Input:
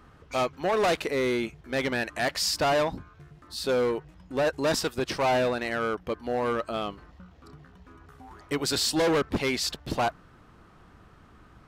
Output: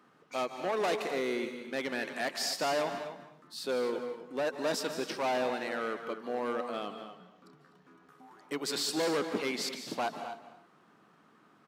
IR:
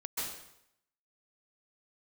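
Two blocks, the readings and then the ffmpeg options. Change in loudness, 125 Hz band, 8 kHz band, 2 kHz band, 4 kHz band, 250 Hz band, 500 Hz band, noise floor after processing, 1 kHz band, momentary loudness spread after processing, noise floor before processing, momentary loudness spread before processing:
−6.5 dB, −14.5 dB, −6.0 dB, −6.0 dB, −6.0 dB, −6.5 dB, −6.0 dB, −63 dBFS, −6.0 dB, 10 LU, −55 dBFS, 9 LU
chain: -filter_complex "[0:a]highpass=frequency=180:width=0.5412,highpass=frequency=180:width=1.3066,asplit=2[link_01][link_02];[link_02]adelay=250.7,volume=-11dB,highshelf=frequency=4000:gain=-5.64[link_03];[link_01][link_03]amix=inputs=2:normalize=0,asplit=2[link_04][link_05];[1:a]atrim=start_sample=2205,afade=type=out:start_time=0.34:duration=0.01,atrim=end_sample=15435,asetrate=40131,aresample=44100[link_06];[link_05][link_06]afir=irnorm=-1:irlink=0,volume=-9.5dB[link_07];[link_04][link_07]amix=inputs=2:normalize=0,volume=-8.5dB"

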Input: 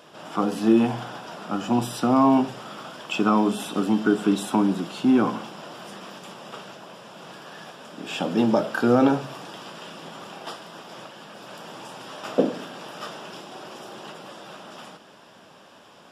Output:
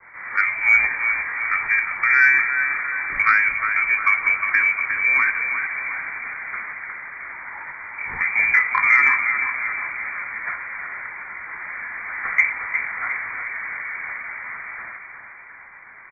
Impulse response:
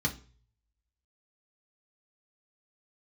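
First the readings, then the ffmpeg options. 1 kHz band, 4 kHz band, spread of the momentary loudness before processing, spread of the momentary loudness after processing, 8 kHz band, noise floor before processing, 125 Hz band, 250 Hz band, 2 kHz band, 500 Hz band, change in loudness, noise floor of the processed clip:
+1.5 dB, below −15 dB, 21 LU, 17 LU, below −15 dB, −50 dBFS, below −15 dB, below −25 dB, +21.0 dB, below −20 dB, +3.5 dB, −42 dBFS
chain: -filter_complex "[0:a]highpass=frequency=260:width=0.5412,highpass=frequency=260:width=1.3066,lowpass=frequency=2200:width_type=q:width=0.5098,lowpass=frequency=2200:width_type=q:width=0.6013,lowpass=frequency=2200:width_type=q:width=0.9,lowpass=frequency=2200:width_type=q:width=2.563,afreqshift=-2600,acrossover=split=330|460|1700[link_01][link_02][link_03][link_04];[link_04]acompressor=threshold=-38dB:ratio=6[link_05];[link_01][link_02][link_03][link_05]amix=inputs=4:normalize=0,asplit=2[link_06][link_07];[link_07]adelay=19,volume=-13.5dB[link_08];[link_06][link_08]amix=inputs=2:normalize=0,aecho=1:1:357|714|1071|1428|1785|2142:0.422|0.223|0.118|0.0628|0.0333|0.0176,acontrast=54,adynamicequalizer=threshold=0.0158:dfrequency=1600:dqfactor=0.7:tfrequency=1600:tqfactor=0.7:attack=5:release=100:ratio=0.375:range=3.5:mode=boostabove:tftype=highshelf"

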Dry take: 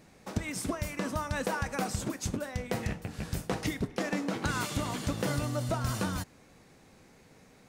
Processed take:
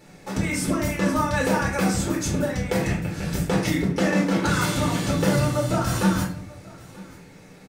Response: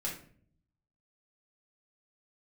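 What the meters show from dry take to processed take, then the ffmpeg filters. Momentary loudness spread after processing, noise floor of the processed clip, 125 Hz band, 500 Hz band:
11 LU, −47 dBFS, +10.0 dB, +10.5 dB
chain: -filter_complex "[0:a]lowshelf=frequency=83:gain=-7.5,aecho=1:1:934:0.0794[link_01];[1:a]atrim=start_sample=2205[link_02];[link_01][link_02]afir=irnorm=-1:irlink=0,volume=7.5dB"

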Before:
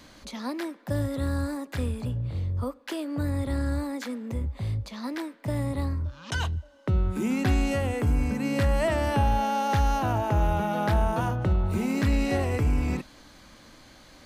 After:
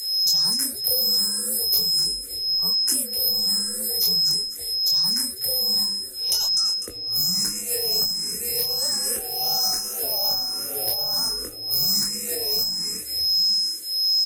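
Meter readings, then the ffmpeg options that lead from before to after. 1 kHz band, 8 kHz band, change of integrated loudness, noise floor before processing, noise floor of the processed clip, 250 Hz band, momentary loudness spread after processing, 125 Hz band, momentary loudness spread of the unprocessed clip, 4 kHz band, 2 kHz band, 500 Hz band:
−11.0 dB, +20.5 dB, +7.5 dB, −52 dBFS, −34 dBFS, −12.5 dB, 6 LU, −19.0 dB, 9 LU, +24.0 dB, −10.0 dB, −6.0 dB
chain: -filter_complex "[0:a]asplit=2[link_01][link_02];[link_02]asplit=4[link_03][link_04][link_05][link_06];[link_03]adelay=250,afreqshift=-110,volume=-10dB[link_07];[link_04]adelay=500,afreqshift=-220,volume=-17.5dB[link_08];[link_05]adelay=750,afreqshift=-330,volume=-25.1dB[link_09];[link_06]adelay=1000,afreqshift=-440,volume=-32.6dB[link_10];[link_07][link_08][link_09][link_10]amix=inputs=4:normalize=0[link_11];[link_01][link_11]amix=inputs=2:normalize=0,asoftclip=type=tanh:threshold=-17dB,flanger=delay=20:depth=6.3:speed=2.6,aeval=exprs='val(0)+0.0141*sin(2*PI*5200*n/s)':channel_layout=same,acompressor=threshold=-29dB:ratio=6,highpass=230,afreqshift=-72,aemphasis=mode=production:type=50fm,aexciter=amount=11.9:drive=4.5:freq=5000,equalizer=frequency=450:width=3.5:gain=7.5,asplit=2[link_12][link_13];[link_13]afreqshift=1.3[link_14];[link_12][link_14]amix=inputs=2:normalize=1"

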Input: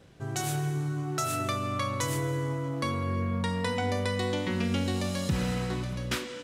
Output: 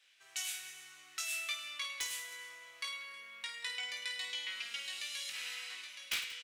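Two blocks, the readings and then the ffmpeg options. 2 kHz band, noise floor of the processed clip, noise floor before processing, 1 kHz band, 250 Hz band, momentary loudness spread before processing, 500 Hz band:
−3.0 dB, −60 dBFS, −40 dBFS, −19.5 dB, below −40 dB, 3 LU, −29.5 dB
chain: -af "highpass=frequency=2400:width_type=q:width=1.9,aeval=exprs='(mod(7.5*val(0)+1,2)-1)/7.5':channel_layout=same,aecho=1:1:20|52|103.2|185.1|316.2:0.631|0.398|0.251|0.158|0.1,volume=-6.5dB"

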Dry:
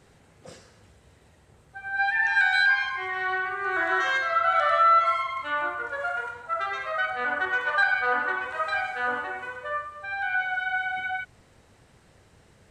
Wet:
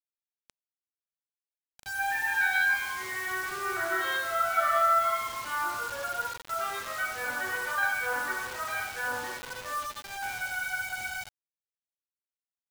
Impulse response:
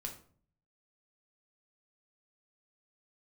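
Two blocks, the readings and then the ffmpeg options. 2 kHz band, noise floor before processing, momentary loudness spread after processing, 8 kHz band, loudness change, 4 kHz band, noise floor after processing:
−5.0 dB, −58 dBFS, 11 LU, can't be measured, −4.5 dB, −2.5 dB, below −85 dBFS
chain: -filter_complex "[1:a]atrim=start_sample=2205,asetrate=41895,aresample=44100[link_01];[0:a][link_01]afir=irnorm=-1:irlink=0,afftdn=noise_reduction=13:noise_floor=-47,aeval=exprs='val(0)+0.002*sin(2*PI*850*n/s)':channel_layout=same,acrusher=bits=5:mix=0:aa=0.000001,volume=-3dB"

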